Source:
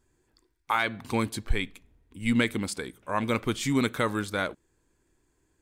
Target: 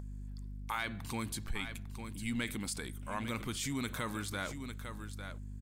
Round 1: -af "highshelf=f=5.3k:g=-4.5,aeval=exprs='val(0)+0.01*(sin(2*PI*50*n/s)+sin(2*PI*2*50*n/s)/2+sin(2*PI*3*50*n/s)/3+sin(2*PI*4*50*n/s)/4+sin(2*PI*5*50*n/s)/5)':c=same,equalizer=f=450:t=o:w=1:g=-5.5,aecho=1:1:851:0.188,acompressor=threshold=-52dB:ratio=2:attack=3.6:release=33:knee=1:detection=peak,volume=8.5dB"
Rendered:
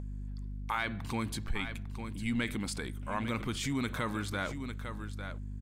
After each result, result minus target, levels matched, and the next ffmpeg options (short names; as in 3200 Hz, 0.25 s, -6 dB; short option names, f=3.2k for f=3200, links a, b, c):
8000 Hz band -5.5 dB; compressor: peak gain reduction -4 dB
-af "highshelf=f=5.3k:g=7.5,aeval=exprs='val(0)+0.01*(sin(2*PI*50*n/s)+sin(2*PI*2*50*n/s)/2+sin(2*PI*3*50*n/s)/3+sin(2*PI*4*50*n/s)/4+sin(2*PI*5*50*n/s)/5)':c=same,equalizer=f=450:t=o:w=1:g=-5.5,aecho=1:1:851:0.188,acompressor=threshold=-52dB:ratio=2:attack=3.6:release=33:knee=1:detection=peak,volume=8.5dB"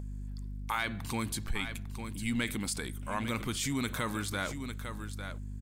compressor: peak gain reduction -4 dB
-af "highshelf=f=5.3k:g=7.5,aeval=exprs='val(0)+0.01*(sin(2*PI*50*n/s)+sin(2*PI*2*50*n/s)/2+sin(2*PI*3*50*n/s)/3+sin(2*PI*4*50*n/s)/4+sin(2*PI*5*50*n/s)/5)':c=same,equalizer=f=450:t=o:w=1:g=-5.5,aecho=1:1:851:0.188,acompressor=threshold=-60dB:ratio=2:attack=3.6:release=33:knee=1:detection=peak,volume=8.5dB"